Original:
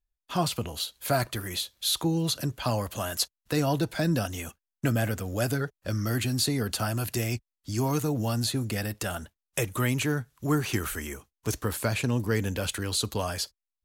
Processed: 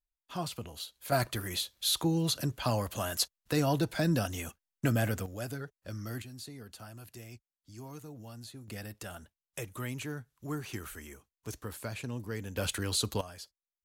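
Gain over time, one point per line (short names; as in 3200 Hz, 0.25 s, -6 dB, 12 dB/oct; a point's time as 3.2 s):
-9.5 dB
from 1.12 s -2.5 dB
from 5.26 s -11 dB
from 6.22 s -19 dB
from 8.68 s -11.5 dB
from 12.57 s -2.5 dB
from 13.21 s -15.5 dB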